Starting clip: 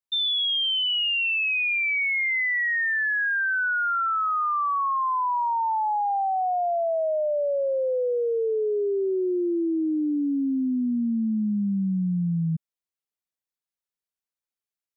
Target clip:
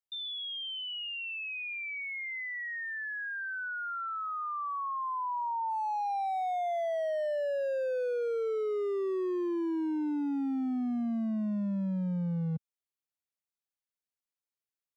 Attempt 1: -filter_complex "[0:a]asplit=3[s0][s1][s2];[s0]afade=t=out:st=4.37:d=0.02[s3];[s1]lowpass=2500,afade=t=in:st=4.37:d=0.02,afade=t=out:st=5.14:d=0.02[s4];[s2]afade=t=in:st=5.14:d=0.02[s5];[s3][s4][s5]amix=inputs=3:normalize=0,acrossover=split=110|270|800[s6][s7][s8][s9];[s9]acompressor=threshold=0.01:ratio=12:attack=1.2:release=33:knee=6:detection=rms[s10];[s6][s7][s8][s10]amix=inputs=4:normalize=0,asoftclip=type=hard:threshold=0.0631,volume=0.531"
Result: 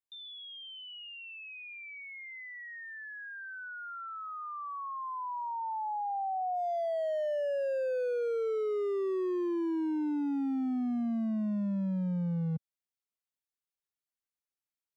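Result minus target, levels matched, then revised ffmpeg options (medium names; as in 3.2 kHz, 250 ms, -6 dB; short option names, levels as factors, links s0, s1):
compression: peak gain reduction +8.5 dB
-filter_complex "[0:a]asplit=3[s0][s1][s2];[s0]afade=t=out:st=4.37:d=0.02[s3];[s1]lowpass=2500,afade=t=in:st=4.37:d=0.02,afade=t=out:st=5.14:d=0.02[s4];[s2]afade=t=in:st=5.14:d=0.02[s5];[s3][s4][s5]amix=inputs=3:normalize=0,acrossover=split=110|270|800[s6][s7][s8][s9];[s9]acompressor=threshold=0.0282:ratio=12:attack=1.2:release=33:knee=6:detection=rms[s10];[s6][s7][s8][s10]amix=inputs=4:normalize=0,asoftclip=type=hard:threshold=0.0631,volume=0.531"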